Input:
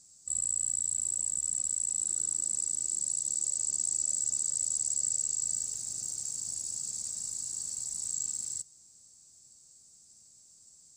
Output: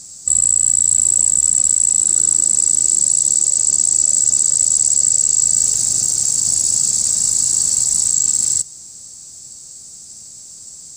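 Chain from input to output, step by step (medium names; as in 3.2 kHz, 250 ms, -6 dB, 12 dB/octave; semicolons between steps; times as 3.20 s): loudness maximiser +25.5 dB; trim -4 dB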